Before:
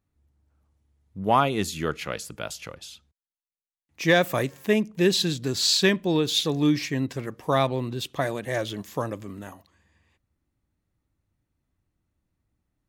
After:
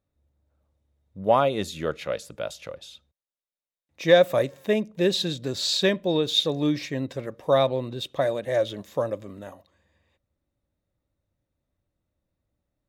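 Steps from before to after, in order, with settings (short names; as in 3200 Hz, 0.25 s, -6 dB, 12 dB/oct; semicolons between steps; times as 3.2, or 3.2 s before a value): high shelf 6700 Hz -5.5 dB; small resonant body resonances 560/3700 Hz, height 12 dB, ringing for 25 ms; gain -3.5 dB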